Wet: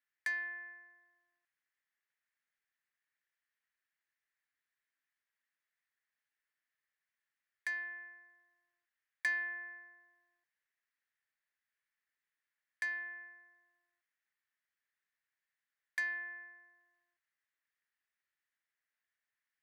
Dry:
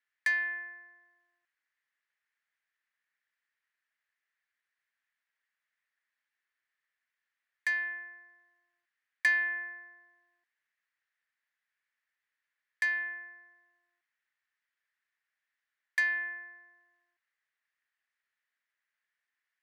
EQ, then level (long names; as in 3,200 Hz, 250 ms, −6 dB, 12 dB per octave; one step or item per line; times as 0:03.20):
dynamic equaliser 2,800 Hz, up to −6 dB, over −43 dBFS, Q 1.1
−5.0 dB